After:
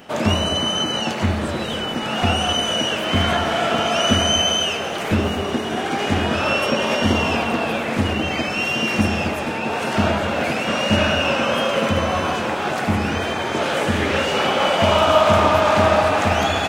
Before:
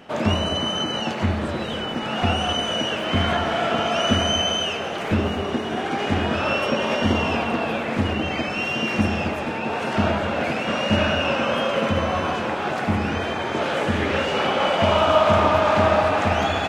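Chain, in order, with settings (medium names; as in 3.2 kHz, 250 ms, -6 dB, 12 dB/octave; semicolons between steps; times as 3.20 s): treble shelf 6.5 kHz +12 dB; trim +2 dB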